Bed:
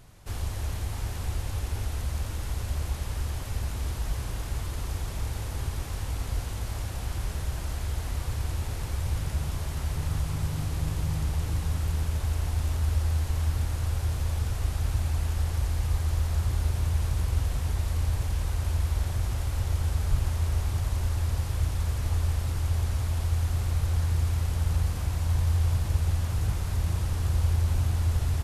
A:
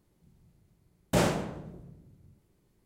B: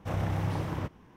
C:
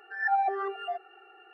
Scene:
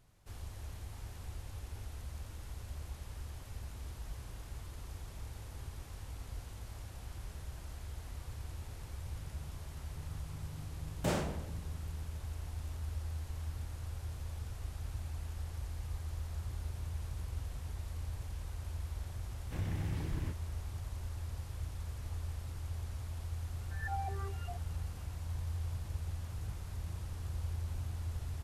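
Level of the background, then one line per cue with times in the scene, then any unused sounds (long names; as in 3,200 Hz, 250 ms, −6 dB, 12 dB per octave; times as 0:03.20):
bed −14 dB
0:09.91: mix in A −8.5 dB
0:19.45: mix in B −7.5 dB + flat-topped bell 830 Hz −8.5 dB
0:23.60: mix in C −14.5 dB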